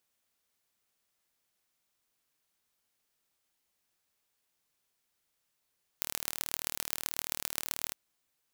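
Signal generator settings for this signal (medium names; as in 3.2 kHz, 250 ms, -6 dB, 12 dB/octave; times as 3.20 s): pulse train 38.4 per s, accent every 5, -3 dBFS 1.91 s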